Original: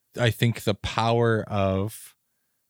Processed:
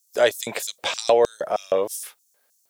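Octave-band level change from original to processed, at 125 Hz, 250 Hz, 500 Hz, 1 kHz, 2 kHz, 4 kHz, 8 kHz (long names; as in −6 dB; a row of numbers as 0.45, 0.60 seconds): below −20 dB, −9.5 dB, +5.5 dB, +1.0 dB, +0.5 dB, +2.5 dB, +9.5 dB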